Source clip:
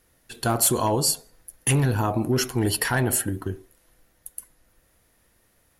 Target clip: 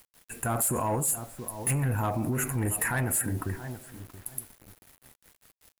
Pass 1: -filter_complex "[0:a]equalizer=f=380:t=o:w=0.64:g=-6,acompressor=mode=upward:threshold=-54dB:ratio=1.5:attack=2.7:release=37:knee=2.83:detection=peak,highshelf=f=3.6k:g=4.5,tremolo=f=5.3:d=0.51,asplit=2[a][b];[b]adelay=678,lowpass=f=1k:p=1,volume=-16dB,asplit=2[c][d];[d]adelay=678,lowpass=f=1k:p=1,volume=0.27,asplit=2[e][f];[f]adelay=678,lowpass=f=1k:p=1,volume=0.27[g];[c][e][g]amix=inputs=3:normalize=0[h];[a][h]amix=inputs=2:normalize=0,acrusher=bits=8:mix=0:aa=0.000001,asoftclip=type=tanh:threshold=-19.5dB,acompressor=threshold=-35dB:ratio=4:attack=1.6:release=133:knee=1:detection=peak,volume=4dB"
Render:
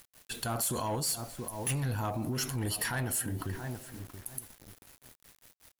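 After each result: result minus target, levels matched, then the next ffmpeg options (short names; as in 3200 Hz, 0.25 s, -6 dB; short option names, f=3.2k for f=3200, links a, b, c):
4000 Hz band +15.5 dB; compressor: peak gain reduction +5 dB
-filter_complex "[0:a]asuperstop=centerf=4300:order=12:qfactor=1,equalizer=f=380:t=o:w=0.64:g=-6,acompressor=mode=upward:threshold=-54dB:ratio=1.5:attack=2.7:release=37:knee=2.83:detection=peak,highshelf=f=3.6k:g=4.5,tremolo=f=5.3:d=0.51,asplit=2[a][b];[b]adelay=678,lowpass=f=1k:p=1,volume=-16dB,asplit=2[c][d];[d]adelay=678,lowpass=f=1k:p=1,volume=0.27,asplit=2[e][f];[f]adelay=678,lowpass=f=1k:p=1,volume=0.27[g];[c][e][g]amix=inputs=3:normalize=0[h];[a][h]amix=inputs=2:normalize=0,acrusher=bits=8:mix=0:aa=0.000001,asoftclip=type=tanh:threshold=-19.5dB,acompressor=threshold=-35dB:ratio=4:attack=1.6:release=133:knee=1:detection=peak,volume=4dB"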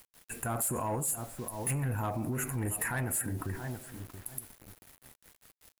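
compressor: peak gain reduction +5 dB
-filter_complex "[0:a]asuperstop=centerf=4300:order=12:qfactor=1,equalizer=f=380:t=o:w=0.64:g=-6,acompressor=mode=upward:threshold=-54dB:ratio=1.5:attack=2.7:release=37:knee=2.83:detection=peak,highshelf=f=3.6k:g=4.5,tremolo=f=5.3:d=0.51,asplit=2[a][b];[b]adelay=678,lowpass=f=1k:p=1,volume=-16dB,asplit=2[c][d];[d]adelay=678,lowpass=f=1k:p=1,volume=0.27,asplit=2[e][f];[f]adelay=678,lowpass=f=1k:p=1,volume=0.27[g];[c][e][g]amix=inputs=3:normalize=0[h];[a][h]amix=inputs=2:normalize=0,acrusher=bits=8:mix=0:aa=0.000001,asoftclip=type=tanh:threshold=-19.5dB,acompressor=threshold=-28.5dB:ratio=4:attack=1.6:release=133:knee=1:detection=peak,volume=4dB"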